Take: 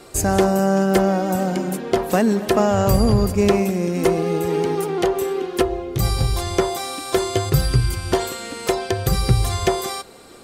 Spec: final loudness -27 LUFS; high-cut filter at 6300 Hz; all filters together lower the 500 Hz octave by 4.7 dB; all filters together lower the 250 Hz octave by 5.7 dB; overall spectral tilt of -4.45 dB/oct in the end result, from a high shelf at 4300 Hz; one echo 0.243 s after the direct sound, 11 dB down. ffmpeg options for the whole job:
-af "lowpass=6.3k,equalizer=f=250:t=o:g=-8,equalizer=f=500:t=o:g=-3.5,highshelf=f=4.3k:g=8.5,aecho=1:1:243:0.282,volume=-4.5dB"

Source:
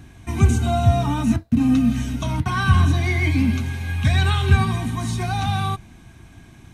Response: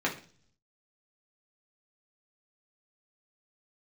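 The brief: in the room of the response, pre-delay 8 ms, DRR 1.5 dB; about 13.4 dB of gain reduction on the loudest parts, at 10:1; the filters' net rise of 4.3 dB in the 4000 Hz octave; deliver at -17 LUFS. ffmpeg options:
-filter_complex "[0:a]equalizer=f=4k:t=o:g=5,acompressor=threshold=-23dB:ratio=10,asplit=2[a][b];[1:a]atrim=start_sample=2205,adelay=8[c];[b][c]afir=irnorm=-1:irlink=0,volume=-11dB[d];[a][d]amix=inputs=2:normalize=0,volume=9.5dB"

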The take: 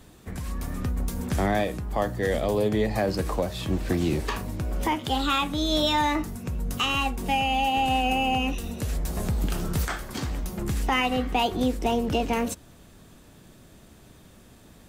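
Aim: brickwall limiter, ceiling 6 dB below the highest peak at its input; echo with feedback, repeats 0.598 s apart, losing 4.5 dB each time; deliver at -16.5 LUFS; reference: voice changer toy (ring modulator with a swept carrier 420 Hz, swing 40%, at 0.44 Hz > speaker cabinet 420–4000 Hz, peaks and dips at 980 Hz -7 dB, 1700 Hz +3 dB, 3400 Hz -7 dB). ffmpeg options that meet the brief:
-af "alimiter=limit=-19.5dB:level=0:latency=1,aecho=1:1:598|1196|1794|2392|2990|3588|4186|4784|5382:0.596|0.357|0.214|0.129|0.0772|0.0463|0.0278|0.0167|0.01,aeval=exprs='val(0)*sin(2*PI*420*n/s+420*0.4/0.44*sin(2*PI*0.44*n/s))':c=same,highpass=420,equalizer=f=980:t=q:w=4:g=-7,equalizer=f=1.7k:t=q:w=4:g=3,equalizer=f=3.4k:t=q:w=4:g=-7,lowpass=f=4k:w=0.5412,lowpass=f=4k:w=1.3066,volume=16.5dB"

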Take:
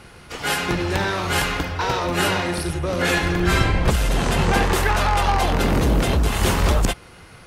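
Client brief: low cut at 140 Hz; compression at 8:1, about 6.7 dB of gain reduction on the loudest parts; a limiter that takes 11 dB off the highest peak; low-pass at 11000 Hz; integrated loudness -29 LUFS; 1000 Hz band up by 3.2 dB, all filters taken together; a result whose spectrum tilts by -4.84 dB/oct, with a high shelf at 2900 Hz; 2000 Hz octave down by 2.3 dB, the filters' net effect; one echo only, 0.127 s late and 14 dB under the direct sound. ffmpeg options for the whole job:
-af "highpass=140,lowpass=11k,equalizer=f=1k:t=o:g=5.5,equalizer=f=2k:t=o:g=-3.5,highshelf=f=2.9k:g=-4.5,acompressor=threshold=-21dB:ratio=8,alimiter=limit=-21.5dB:level=0:latency=1,aecho=1:1:127:0.2,volume=1dB"

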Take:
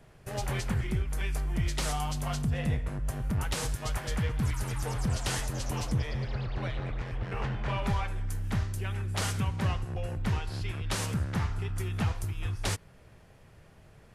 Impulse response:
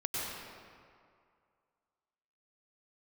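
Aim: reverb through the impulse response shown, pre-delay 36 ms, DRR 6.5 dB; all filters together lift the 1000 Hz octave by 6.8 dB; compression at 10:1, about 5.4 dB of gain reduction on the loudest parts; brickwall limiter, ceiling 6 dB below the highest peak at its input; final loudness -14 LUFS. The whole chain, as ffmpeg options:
-filter_complex "[0:a]equalizer=f=1k:t=o:g=8.5,acompressor=threshold=-29dB:ratio=10,alimiter=level_in=2dB:limit=-24dB:level=0:latency=1,volume=-2dB,asplit=2[a][b];[1:a]atrim=start_sample=2205,adelay=36[c];[b][c]afir=irnorm=-1:irlink=0,volume=-12dB[d];[a][d]amix=inputs=2:normalize=0,volume=22dB"

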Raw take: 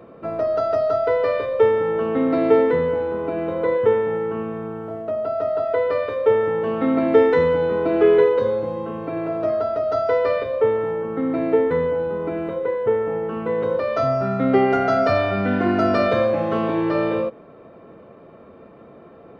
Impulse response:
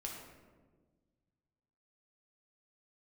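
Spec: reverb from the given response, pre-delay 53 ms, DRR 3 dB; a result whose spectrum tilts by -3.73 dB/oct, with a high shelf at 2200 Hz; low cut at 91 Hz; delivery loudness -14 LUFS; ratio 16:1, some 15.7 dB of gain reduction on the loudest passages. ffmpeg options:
-filter_complex "[0:a]highpass=91,highshelf=f=2.2k:g=3.5,acompressor=threshold=-26dB:ratio=16,asplit=2[a][b];[1:a]atrim=start_sample=2205,adelay=53[c];[b][c]afir=irnorm=-1:irlink=0,volume=-1.5dB[d];[a][d]amix=inputs=2:normalize=0,volume=13.5dB"

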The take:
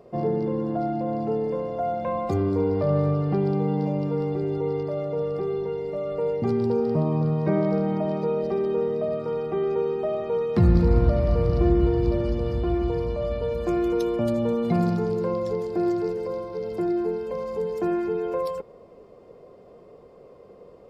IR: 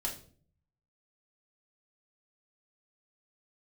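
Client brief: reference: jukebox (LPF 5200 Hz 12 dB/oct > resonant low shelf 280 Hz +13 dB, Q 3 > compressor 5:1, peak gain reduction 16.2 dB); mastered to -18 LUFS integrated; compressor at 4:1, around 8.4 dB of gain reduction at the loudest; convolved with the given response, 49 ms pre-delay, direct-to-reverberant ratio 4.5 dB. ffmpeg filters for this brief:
-filter_complex "[0:a]acompressor=threshold=-23dB:ratio=4,asplit=2[a][b];[1:a]atrim=start_sample=2205,adelay=49[c];[b][c]afir=irnorm=-1:irlink=0,volume=-6.5dB[d];[a][d]amix=inputs=2:normalize=0,lowpass=5.2k,lowshelf=f=280:t=q:w=3:g=13,acompressor=threshold=-21dB:ratio=5,volume=6dB"

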